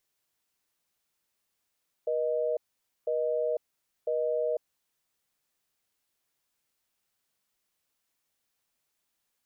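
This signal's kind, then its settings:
call progress tone busy tone, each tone −28.5 dBFS 2.99 s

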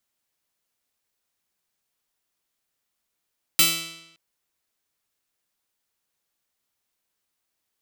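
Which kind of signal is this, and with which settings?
Karplus-Strong string E3, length 0.57 s, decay 0.89 s, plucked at 0.4, bright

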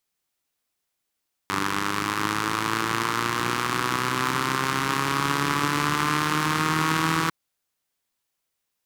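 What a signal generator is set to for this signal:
pulse-train model of a four-cylinder engine, changing speed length 5.80 s, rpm 2,900, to 4,900, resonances 170/300/1,100 Hz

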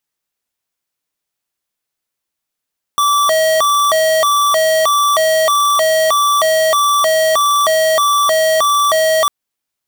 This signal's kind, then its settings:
siren hi-lo 637–1,160 Hz 1.6 per second square −12.5 dBFS 6.30 s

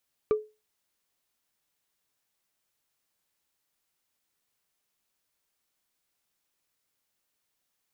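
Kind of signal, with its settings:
struck wood, lowest mode 428 Hz, decay 0.27 s, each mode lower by 11.5 dB, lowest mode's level −17 dB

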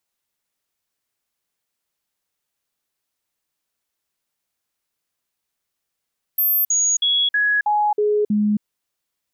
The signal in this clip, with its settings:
stepped sweep 13,400 Hz down, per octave 1, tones 7, 0.27 s, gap 0.05 s −15 dBFS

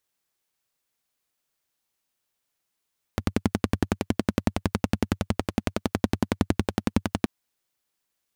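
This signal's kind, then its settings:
pulse-train model of a single-cylinder engine, steady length 4.08 s, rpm 1,300, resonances 96/210 Hz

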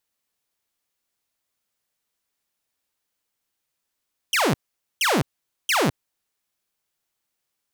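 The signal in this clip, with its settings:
repeated falling chirps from 3,300 Hz, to 110 Hz, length 0.21 s saw, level −15 dB, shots 3, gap 0.47 s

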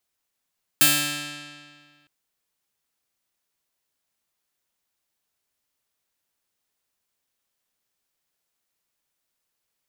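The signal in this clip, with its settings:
Karplus-Strong string D3, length 1.26 s, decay 1.88 s, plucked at 0.3, bright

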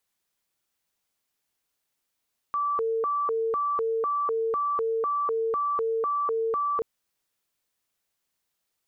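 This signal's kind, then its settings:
siren hi-lo 451–1,160 Hz 2 per second sine −23.5 dBFS 4.28 s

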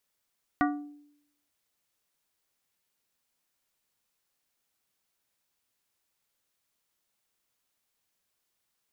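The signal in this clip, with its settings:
struck glass plate, lowest mode 292 Hz, modes 5, decay 0.76 s, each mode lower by 2 dB, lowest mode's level −22 dB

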